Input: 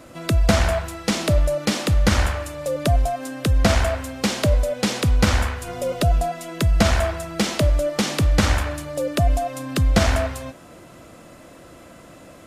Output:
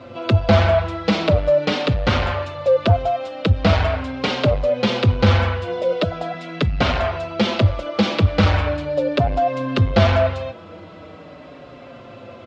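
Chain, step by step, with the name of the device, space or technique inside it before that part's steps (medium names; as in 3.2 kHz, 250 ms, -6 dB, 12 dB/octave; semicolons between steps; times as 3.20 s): 5.63–6.34 s: high-pass 190 Hz 12 dB/octave; barber-pole flanger into a guitar amplifier (endless flanger 5.3 ms -0.41 Hz; saturation -16 dBFS, distortion -15 dB; cabinet simulation 95–4000 Hz, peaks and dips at 97 Hz +8 dB, 150 Hz -4 dB, 300 Hz -3 dB, 510 Hz +3 dB, 1.8 kHz -5 dB); trim +8.5 dB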